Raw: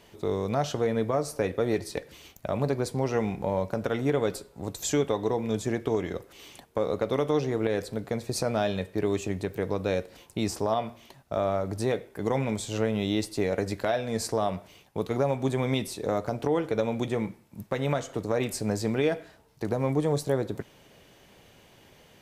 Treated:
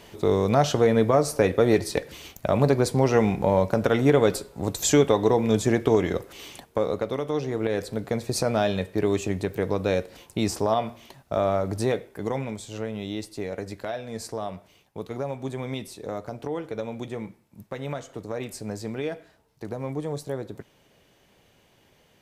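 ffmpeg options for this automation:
-af "volume=4.73,afade=t=out:st=6.33:d=0.88:silence=0.316228,afade=t=in:st=7.21:d=0.88:silence=0.473151,afade=t=out:st=11.77:d=0.8:silence=0.375837"

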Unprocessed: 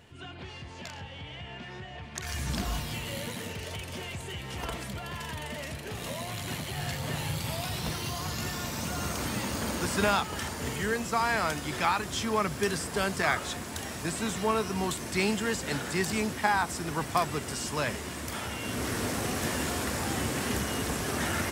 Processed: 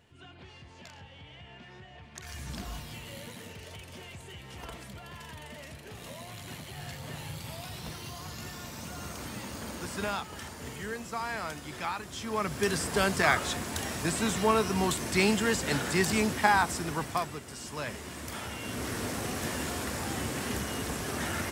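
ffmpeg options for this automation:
-af "volume=2.82,afade=t=in:st=12.19:d=0.7:silence=0.316228,afade=t=out:st=16.58:d=0.85:silence=0.251189,afade=t=in:st=17.43:d=0.89:silence=0.473151"

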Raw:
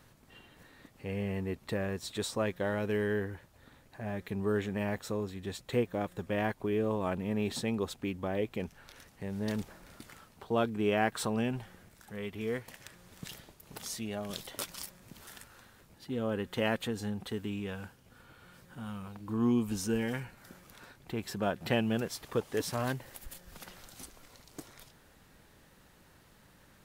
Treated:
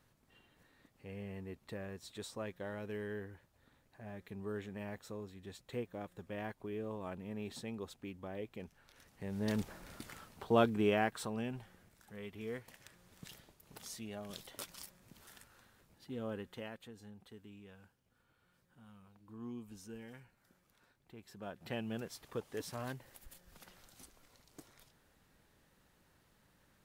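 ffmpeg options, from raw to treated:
-af "volume=2.99,afade=t=in:st=8.91:d=0.86:silence=0.251189,afade=t=out:st=10.66:d=0.53:silence=0.354813,afade=t=out:st=16.3:d=0.4:silence=0.316228,afade=t=in:st=21.26:d=0.73:silence=0.375837"

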